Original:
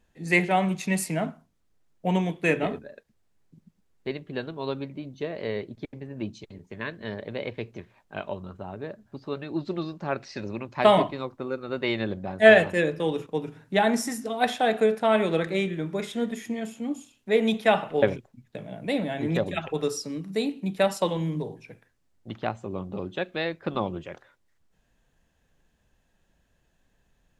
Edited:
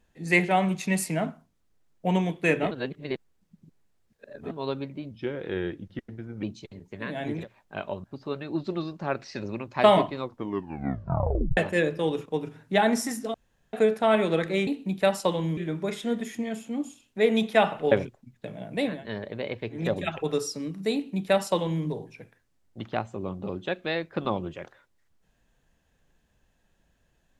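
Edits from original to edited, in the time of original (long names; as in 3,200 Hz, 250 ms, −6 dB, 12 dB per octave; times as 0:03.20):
0:02.71–0:04.51: reverse
0:05.11–0:06.22: play speed 84%
0:06.90–0:07.76: swap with 0:19.05–0:19.30, crossfade 0.24 s
0:08.44–0:09.05: remove
0:11.25: tape stop 1.33 s
0:14.35–0:14.74: fill with room tone
0:20.44–0:21.34: duplicate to 0:15.68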